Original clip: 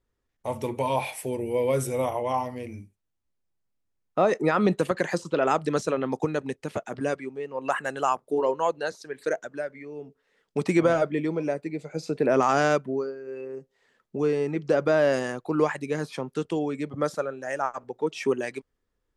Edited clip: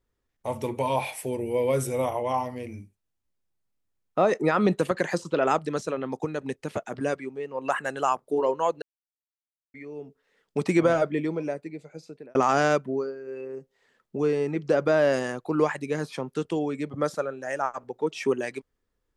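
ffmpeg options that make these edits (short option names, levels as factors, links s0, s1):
-filter_complex "[0:a]asplit=6[s0][s1][s2][s3][s4][s5];[s0]atrim=end=5.592[s6];[s1]atrim=start=5.588:end=6.422,asetpts=PTS-STARTPTS,volume=0.668[s7];[s2]atrim=start=6.418:end=8.82,asetpts=PTS-STARTPTS,afade=t=out:st=2.398:d=0.004:c=hsin[s8];[s3]atrim=start=8.82:end=9.74,asetpts=PTS-STARTPTS,volume=0[s9];[s4]atrim=start=9.74:end=12.35,asetpts=PTS-STARTPTS,afade=t=in:d=0.004:c=hsin,afade=t=out:st=1.43:d=1.18[s10];[s5]atrim=start=12.35,asetpts=PTS-STARTPTS,afade=t=in:d=0.004:c=hsin[s11];[s6][s7]acrossfade=d=0.004:c1=hsin:c2=hsin[s12];[s8][s9][s10][s11]concat=n=4:v=0:a=1[s13];[s12][s13]acrossfade=d=0.004:c1=hsin:c2=hsin"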